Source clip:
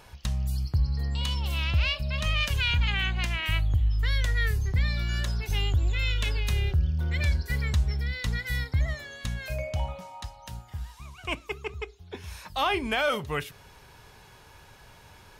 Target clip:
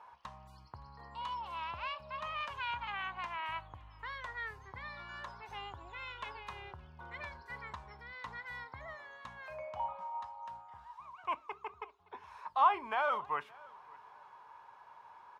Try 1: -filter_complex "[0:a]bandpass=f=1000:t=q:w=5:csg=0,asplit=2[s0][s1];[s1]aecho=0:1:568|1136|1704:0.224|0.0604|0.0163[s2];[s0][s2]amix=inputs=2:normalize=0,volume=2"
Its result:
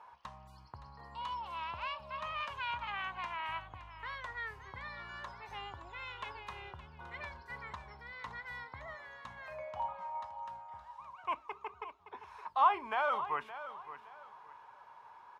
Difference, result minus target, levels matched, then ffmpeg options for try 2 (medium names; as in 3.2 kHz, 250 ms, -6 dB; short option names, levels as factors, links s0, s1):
echo-to-direct +11.5 dB
-filter_complex "[0:a]bandpass=f=1000:t=q:w=5:csg=0,asplit=2[s0][s1];[s1]aecho=0:1:568|1136:0.0596|0.0161[s2];[s0][s2]amix=inputs=2:normalize=0,volume=2"